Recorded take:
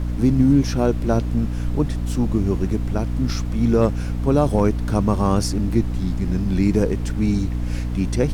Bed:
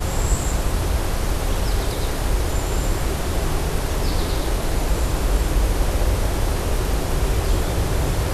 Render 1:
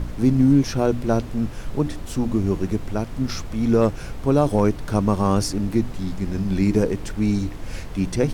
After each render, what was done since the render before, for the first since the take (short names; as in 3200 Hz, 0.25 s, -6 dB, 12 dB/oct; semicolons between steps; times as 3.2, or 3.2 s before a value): de-hum 60 Hz, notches 5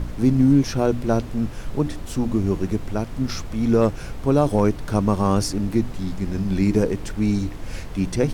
nothing audible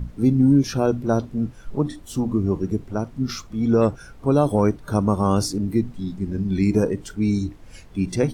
noise print and reduce 13 dB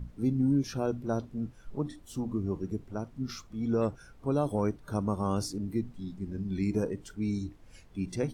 gain -10.5 dB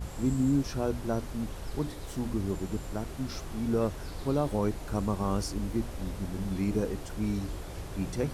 add bed -18.5 dB